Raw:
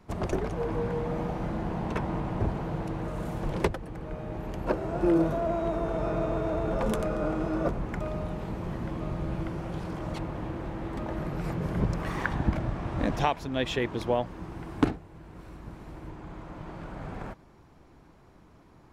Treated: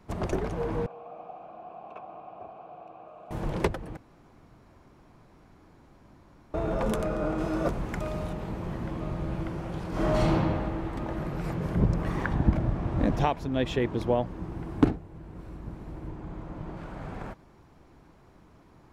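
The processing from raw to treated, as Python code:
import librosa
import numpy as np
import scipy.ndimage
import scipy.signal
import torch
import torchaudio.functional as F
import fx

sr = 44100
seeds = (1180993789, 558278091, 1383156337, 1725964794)

y = fx.vowel_filter(x, sr, vowel='a', at=(0.86, 3.31))
y = fx.high_shelf(y, sr, hz=3300.0, db=8.5, at=(7.38, 8.33))
y = fx.reverb_throw(y, sr, start_s=9.89, length_s=0.43, rt60_s=2.1, drr_db=-10.5)
y = fx.tilt_shelf(y, sr, db=4.0, hz=730.0, at=(11.75, 16.77))
y = fx.edit(y, sr, fx.room_tone_fill(start_s=3.97, length_s=2.57), tone=tone)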